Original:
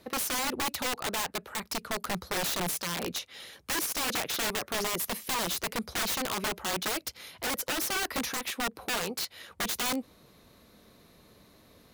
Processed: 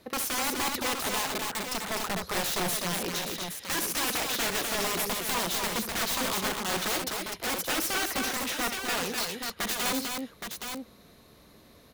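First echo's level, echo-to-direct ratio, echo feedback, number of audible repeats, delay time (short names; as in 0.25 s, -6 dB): -10.0 dB, -1.5 dB, no steady repeat, 3, 67 ms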